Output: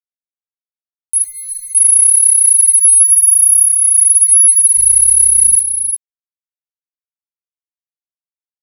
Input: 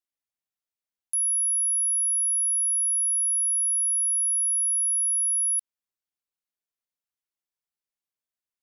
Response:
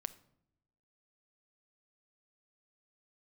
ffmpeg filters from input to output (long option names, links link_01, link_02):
-filter_complex "[0:a]asettb=1/sr,asplit=3[link_01][link_02][link_03];[link_01]atrim=end=1.224[link_04];[link_02]atrim=start=1.22:end=1.75,asetpts=PTS-STARTPTS,afade=type=in:duration=0.004:curve=qsin,afade=type=out:start_time=0.526:duration=0.004:curve=qsin,agate=range=-33dB:threshold=-13dB:ratio=3:detection=peak[link_05];[link_03]atrim=start=1.746[link_06];[link_04][link_05]acrossfade=duration=0.004:curve1=hsin:curve2=qsin[link_07];[link_07][link_06]acrossfade=duration=0.004:curve1=qsin:curve2=hsin,aemphasis=mode=production:type=50kf,asplit=3[link_08][link_09][link_10];[link_08]afade=type=out:start_time=3.07:duration=0.02[link_11];[link_09]acontrast=88,afade=type=in:start_time=3.07:duration=0.02,afade=type=out:start_time=3.66:duration=0.02[link_12];[link_10]afade=type=in:start_time=3.66:duration=0.02[link_13];[link_11][link_12][link_13]amix=inputs=3:normalize=0,alimiter=limit=-10.5dB:level=0:latency=1:release=185,dynaudnorm=framelen=860:gausssize=3:maxgain=16dB,aeval=exprs='val(0)*gte(abs(val(0)),0.0398)':channel_layout=same,asettb=1/sr,asplit=3[link_14][link_15][link_16];[link_14]atrim=end=4.764[link_17];[link_15]atrim=start=4.76:end=5.55,asetpts=PTS-STARTPTS,afade=type=in:duration=0.004:curve=qsin,afade=type=out:start_time=0.786:duration=0.004:curve=qsin,aeval=exprs='val(0)+0.02*(sin(2*PI*50*n/s)+sin(2*PI*2*50*n/s)/2+sin(2*PI*3*50*n/s)/3+sin(2*PI*4*50*n/s)/4+sin(2*PI*5*50*n/s)/5)':channel_layout=same[link_18];[link_16]atrim=start=5.546[link_19];[link_17][link_18]acrossfade=duration=0.004:curve1=hsin:curve2=qsin[link_20];[link_20][link_19]acrossfade=duration=0.004:curve1=qsin:curve2=hsin,flanger=delay=15.5:depth=3.1:speed=0.34,aecho=1:1:355:0.355"